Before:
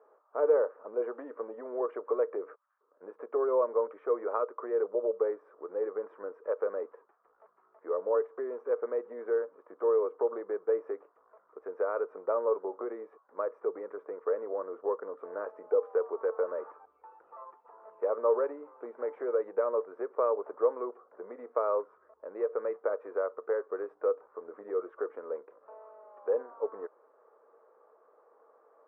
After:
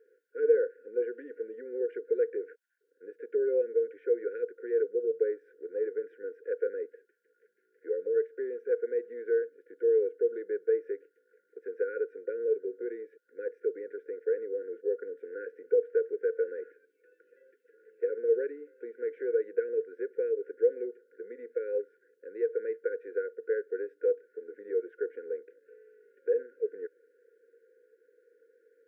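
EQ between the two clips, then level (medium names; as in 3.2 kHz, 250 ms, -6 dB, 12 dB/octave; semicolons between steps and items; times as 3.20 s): high-pass 340 Hz 12 dB/octave; brick-wall FIR band-stop 530–1400 Hz; +3.0 dB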